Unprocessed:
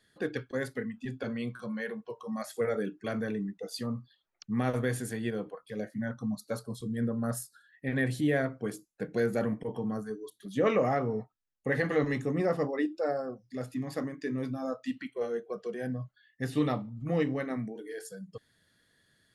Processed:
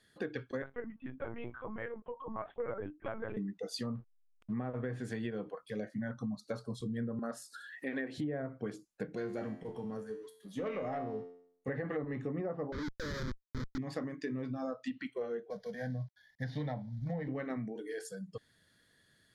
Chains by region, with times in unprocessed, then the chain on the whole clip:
0.62–3.37 s: cabinet simulation 200–2400 Hz, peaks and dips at 230 Hz -6 dB, 390 Hz -9 dB, 920 Hz +7 dB, 1.9 kHz -7 dB + LPC vocoder at 8 kHz pitch kept
3.95–4.53 s: low-pass 2.1 kHz + hysteresis with a dead band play -46 dBFS
7.19–8.18 s: high-pass 240 Hz 24 dB/octave + upward compressor, threshold -36 dBFS
9.15–11.68 s: waveshaping leveller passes 1 + feedback comb 88 Hz, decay 0.62 s, mix 80%
12.72–13.78 s: Schmitt trigger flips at -33.5 dBFS + static phaser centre 2.7 kHz, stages 6 + tape noise reduction on one side only decoder only
15.50–17.28 s: CVSD coder 64 kbps + bass shelf 380 Hz +4 dB + static phaser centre 1.8 kHz, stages 8
whole clip: low-pass that closes with the level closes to 1.2 kHz, closed at -24 dBFS; compression, threshold -34 dBFS

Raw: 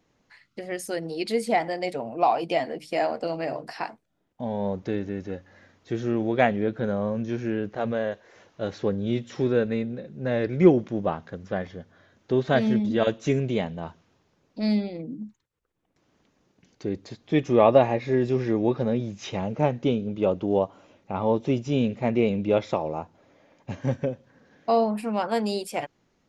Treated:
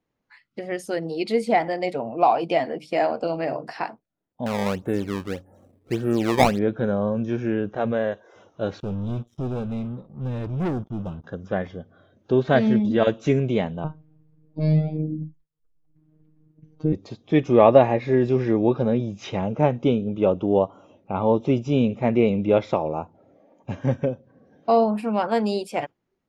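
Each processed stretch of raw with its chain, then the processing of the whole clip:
4.46–6.59 s: level-controlled noise filter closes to 870 Hz, open at -18 dBFS + decimation with a swept rate 18×, swing 160% 1.7 Hz
8.80–11.24 s: amplifier tone stack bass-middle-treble 10-0-1 + waveshaping leveller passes 5 + upward expansion, over -45 dBFS
13.84–16.93 s: RIAA curve playback + robot voice 155 Hz
whole clip: spectral noise reduction 14 dB; low-pass 3.1 kHz 6 dB/octave; trim +3.5 dB

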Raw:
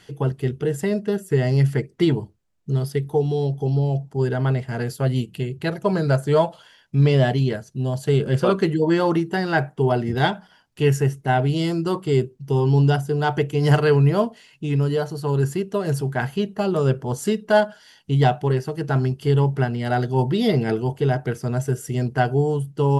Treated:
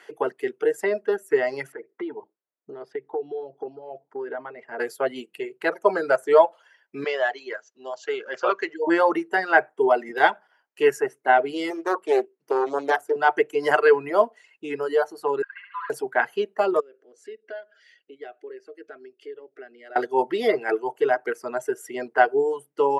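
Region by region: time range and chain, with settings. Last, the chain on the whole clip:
1.72–4.80 s: compression 5:1, threshold -24 dBFS + tape spacing loss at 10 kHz 28 dB
7.04–8.87 s: high-pass 1 kHz 6 dB/octave + careless resampling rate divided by 3×, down none, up filtered
11.70–13.16 s: high-pass 230 Hz + loudspeaker Doppler distortion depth 0.47 ms
15.42–15.90 s: brick-wall FIR band-pass 980–4700 Hz + distance through air 380 m + flutter echo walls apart 11.8 m, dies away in 1.4 s
16.80–19.96 s: compression 2:1, threshold -44 dBFS + distance through air 94 m + static phaser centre 380 Hz, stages 4
whole clip: reverb removal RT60 1.5 s; high-pass 370 Hz 24 dB/octave; resonant high shelf 2.7 kHz -8 dB, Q 1.5; trim +3.5 dB

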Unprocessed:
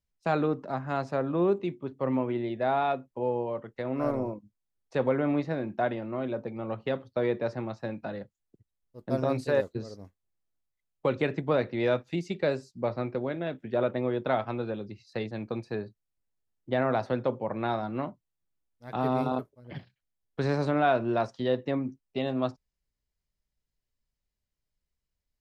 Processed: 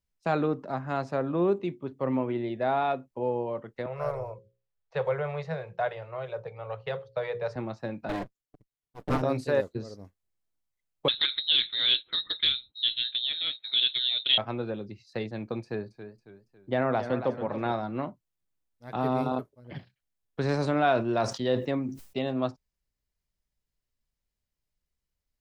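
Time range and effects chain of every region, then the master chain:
3.86–7.56 s: hum notches 60/120/180/240/300/360/420/480/540 Hz + level-controlled noise filter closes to 2.6 kHz, open at -26 dBFS + Chebyshev band-stop 170–430 Hz, order 3
8.09–9.22 s: comb filter that takes the minimum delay 6.8 ms + waveshaping leveller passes 2
11.08–14.38 s: peaking EQ 820 Hz +8.5 dB 0.42 oct + frequency inversion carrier 4 kHz + loudspeaker Doppler distortion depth 0.11 ms
15.63–17.72 s: band-stop 3.9 kHz, Q 15 + modulated delay 277 ms, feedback 42%, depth 93 cents, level -10.5 dB
20.48–22.19 s: treble shelf 4.4 kHz +7 dB + decay stretcher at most 110 dB/s
whole clip: none

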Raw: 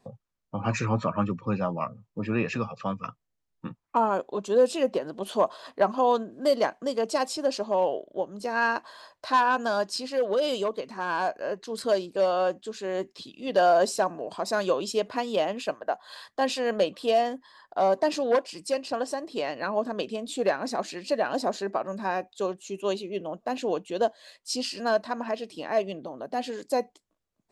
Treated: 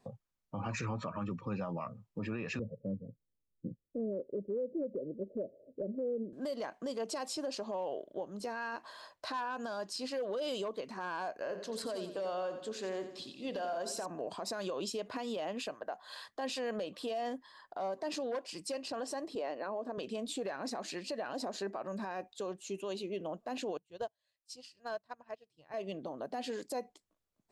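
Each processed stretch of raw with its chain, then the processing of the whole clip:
2.59–6.33 s: steep low-pass 580 Hz 96 dB/octave + compression 2.5:1, threshold -27 dBFS
11.42–14.06 s: hum notches 50/100/150/200/250/300/350/400/450/500 Hz + compression, threshold -30 dBFS + feedback delay 89 ms, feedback 47%, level -10 dB
19.35–19.98 s: high-pass 460 Hz + tilt shelf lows +9 dB, about 760 Hz
23.77–25.74 s: resonant low shelf 170 Hz +9.5 dB, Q 3 + upward expansion 2.5:1, over -40 dBFS
whole clip: compression, threshold -25 dBFS; peak limiter -26 dBFS; trim -3.5 dB

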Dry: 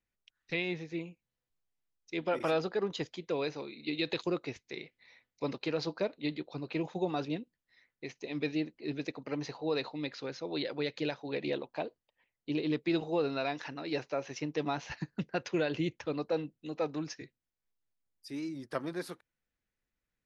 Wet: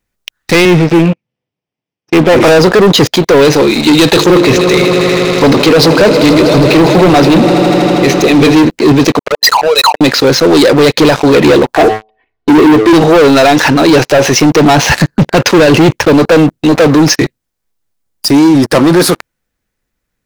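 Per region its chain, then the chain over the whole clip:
0.65–2.42 s: comb filter that takes the minimum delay 0.37 ms + high-pass 110 Hz 24 dB/octave + distance through air 210 m
4.12–8.65 s: hum notches 50/100/150/200/250/300/350/400/450 Hz + echo with a slow build-up 80 ms, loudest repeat 5, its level -18 dB
9.19–10.01 s: resonances exaggerated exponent 3 + inverse Chebyshev high-pass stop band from 290 Hz, stop band 60 dB + waveshaping leveller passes 3
11.75–12.93 s: distance through air 310 m + comb 2.7 ms, depth 92% + de-hum 108.6 Hz, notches 10
whole clip: peaking EQ 2.6 kHz -3.5 dB 1.5 oct; waveshaping leveller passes 5; loudness maximiser +28 dB; trim -1 dB

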